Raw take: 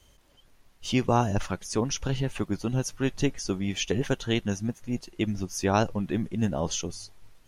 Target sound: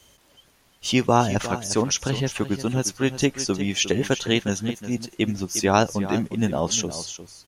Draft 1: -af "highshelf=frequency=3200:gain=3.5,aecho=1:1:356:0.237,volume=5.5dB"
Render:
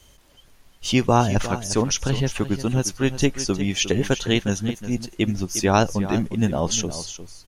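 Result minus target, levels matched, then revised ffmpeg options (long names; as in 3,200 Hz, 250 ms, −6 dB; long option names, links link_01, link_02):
125 Hz band +2.5 dB
-af "highpass=frequency=140:poles=1,highshelf=frequency=3200:gain=3.5,aecho=1:1:356:0.237,volume=5.5dB"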